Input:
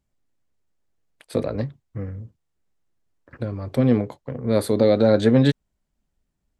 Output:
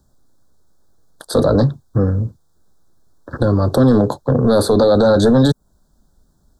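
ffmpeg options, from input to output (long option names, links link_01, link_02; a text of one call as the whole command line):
ffmpeg -i in.wav -filter_complex "[0:a]acrossover=split=140|1600|7900[link_01][link_02][link_03][link_04];[link_01]acompressor=threshold=-36dB:ratio=4[link_05];[link_02]acompressor=threshold=-22dB:ratio=4[link_06];[link_03]acompressor=threshold=-42dB:ratio=4[link_07];[link_04]acompressor=threshold=-53dB:ratio=4[link_08];[link_05][link_06][link_07][link_08]amix=inputs=4:normalize=0,apsyclip=25dB,asuperstop=centerf=2400:order=8:qfactor=1.2,volume=-7dB" out.wav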